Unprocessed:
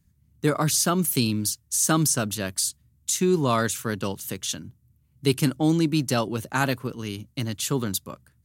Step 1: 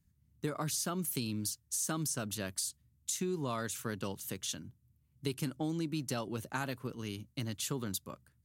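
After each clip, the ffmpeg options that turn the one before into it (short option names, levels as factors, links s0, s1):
-af "acompressor=threshold=0.0631:ratio=5,volume=0.398"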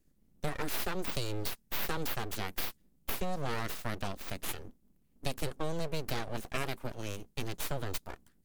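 -af "aeval=exprs='abs(val(0))':c=same,volume=1.5"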